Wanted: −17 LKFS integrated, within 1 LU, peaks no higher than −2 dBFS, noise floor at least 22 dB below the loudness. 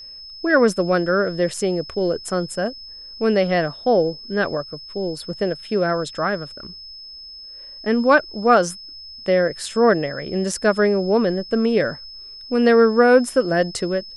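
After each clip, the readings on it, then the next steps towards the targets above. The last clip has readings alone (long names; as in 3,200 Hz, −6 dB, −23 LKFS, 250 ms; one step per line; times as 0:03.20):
interfering tone 5,200 Hz; level of the tone −36 dBFS; integrated loudness −20.0 LKFS; sample peak −2.5 dBFS; target loudness −17.0 LKFS
→ notch filter 5,200 Hz, Q 30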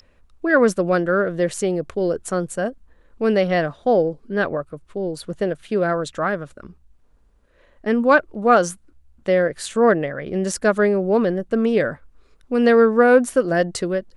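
interfering tone none found; integrated loudness −20.0 LKFS; sample peak −3.0 dBFS; target loudness −17.0 LKFS
→ level +3 dB
brickwall limiter −2 dBFS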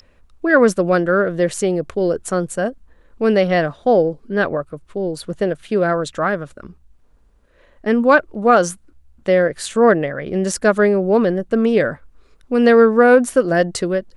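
integrated loudness −17.0 LKFS; sample peak −2.0 dBFS; background noise floor −53 dBFS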